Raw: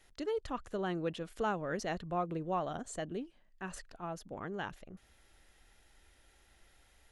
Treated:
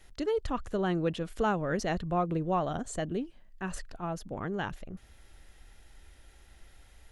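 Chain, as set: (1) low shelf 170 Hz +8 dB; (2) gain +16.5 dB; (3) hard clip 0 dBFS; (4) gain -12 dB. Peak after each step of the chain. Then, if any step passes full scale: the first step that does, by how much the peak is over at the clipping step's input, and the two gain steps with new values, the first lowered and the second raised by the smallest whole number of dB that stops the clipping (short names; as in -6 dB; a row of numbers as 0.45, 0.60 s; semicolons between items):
-21.5, -5.0, -5.0, -17.0 dBFS; no overload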